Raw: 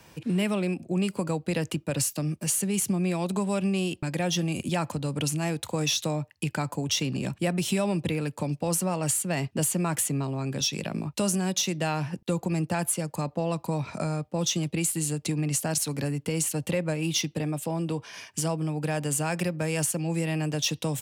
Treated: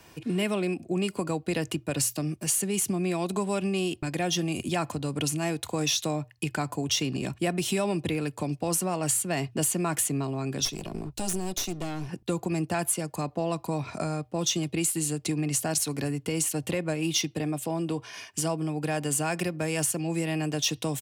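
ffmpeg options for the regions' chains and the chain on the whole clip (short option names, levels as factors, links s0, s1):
-filter_complex "[0:a]asettb=1/sr,asplit=3[s0][s1][s2];[s0]atrim=end=10.654[s3];[s1]atrim=start=10.65:end=12.09,asetpts=PTS-STARTPTS,afade=t=in:d=0.004:c=qsin,afade=t=out:st=1.436:d=0.004:c=qsin,highpass=f=83:w=0.5412,highpass=f=83:w=1.3066,equalizer=f=1600:w=0.84:g=-11,aeval=exprs='clip(val(0),-1,0.0168)':c=same[s4];[s2]atrim=start=12.086[s5];[s3][s4]acrossfade=d=0.004:c1=hsin:c2=qsin[s6];[s6][s5]acrossfade=d=0.004:c1=qsin:c2=hsin,bandreject=f=60:t=h:w=6,bandreject=f=120:t=h:w=6,aecho=1:1:2.8:0.33"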